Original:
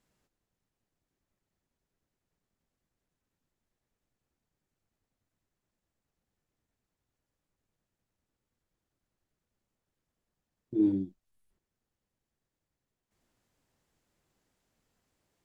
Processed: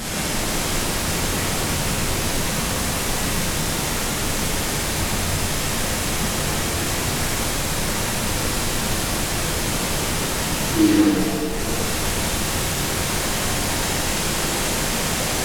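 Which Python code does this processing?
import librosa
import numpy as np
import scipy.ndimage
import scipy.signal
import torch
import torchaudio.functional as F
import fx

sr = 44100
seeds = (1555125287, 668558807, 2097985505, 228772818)

y = fx.delta_mod(x, sr, bps=64000, step_db=-28.5)
y = fx.rev_shimmer(y, sr, seeds[0], rt60_s=2.4, semitones=7, shimmer_db=-8, drr_db=-7.5)
y = y * 10.0 ** (4.0 / 20.0)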